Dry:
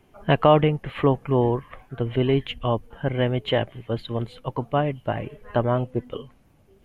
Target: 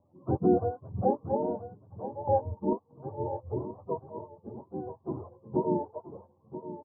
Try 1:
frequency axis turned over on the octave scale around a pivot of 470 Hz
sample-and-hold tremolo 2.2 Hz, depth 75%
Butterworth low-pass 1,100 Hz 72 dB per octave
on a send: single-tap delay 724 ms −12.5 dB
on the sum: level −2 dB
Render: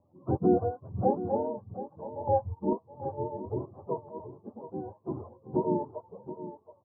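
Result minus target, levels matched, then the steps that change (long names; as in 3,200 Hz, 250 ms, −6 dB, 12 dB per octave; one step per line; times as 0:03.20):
echo 256 ms early
change: single-tap delay 980 ms −12.5 dB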